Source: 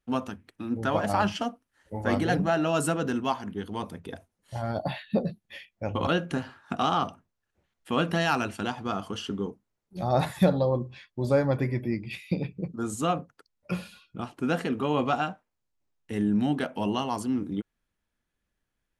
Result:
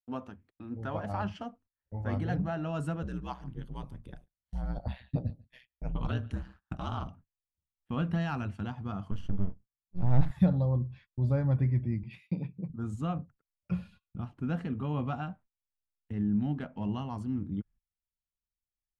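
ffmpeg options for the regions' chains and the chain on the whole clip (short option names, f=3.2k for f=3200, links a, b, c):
-filter_complex "[0:a]asettb=1/sr,asplit=3[a][b][c];[a]atrim=end=3.024[d];[b]atrim=start=3.02:end=7.08,asetpts=PTS-STARTPTS,afade=t=in:d=0.004:c=qsin,afade=t=out:st=4.056:d=0.004:c=qsin,highshelf=f=4.3k:g=11,aeval=exprs='val(0)*sin(2*PI*63*n/s)':c=same,aecho=1:1:143:0.0668,atrim=end_sample=179046[e];[c]atrim=start=7.076[f];[d][e]acrossfade=d=0.004:c1=hsin:c2=qsin[g];[g][f]acrossfade=d=0.004:c1=qsin:c2=hsin,asettb=1/sr,asplit=3[h][i][j];[h]atrim=end=9.114[k];[i]atrim=start=9.11:end=10.31,asetpts=PTS-STARTPTS,afade=t=in:d=0.004:c=qsin,afade=t=out:st=1.196:d=0.004:c=qsin,highpass=f=96:p=1,lowshelf=f=210:g=10.5,aeval=exprs='max(val(0),0)':c=same[l];[j]atrim=start=10.306[m];[k][l]acrossfade=d=0.004:c1=hsin:c2=qsin[n];[n][m]acrossfade=d=0.004:c1=qsin:c2=hsin,asettb=1/sr,asplit=3[o][p][q];[o]atrim=end=12.034[r];[p]atrim=start=12.03:end=12.7,asetpts=PTS-STARTPTS,afade=t=in:d=0.004:c=qsin,afade=t=out:st=0.666:d=0.004:c=qsin,highpass=180,equalizer=f=960:w=5.6:g=7.5[s];[q]atrim=start=12.696[t];[r][s]acrossfade=d=0.004:c1=hsin:c2=qsin[u];[u][t]acrossfade=d=0.004:c1=qsin:c2=hsin,asettb=1/sr,asplit=3[v][w][x];[v]atrim=end=16.124[y];[w]atrim=start=16.12:end=16.89,asetpts=PTS-STARTPTS,afade=t=in:d=0.004:c=qsin,afade=t=out:st=0.766:d=0.004:c=qsin,equalizer=f=110:t=o:w=0.98:g=-3.5,adynamicsmooth=sensitivity=7.5:basefreq=3.4k[z];[x]atrim=start=16.886[aa];[y][z]acrossfade=d=0.004:c1=hsin:c2=qsin[ab];[ab][aa]acrossfade=d=0.004:c1=qsin:c2=hsin,lowpass=f=1.6k:p=1,agate=range=-22dB:threshold=-51dB:ratio=16:detection=peak,asubboost=boost=7.5:cutoff=140,volume=-8.5dB"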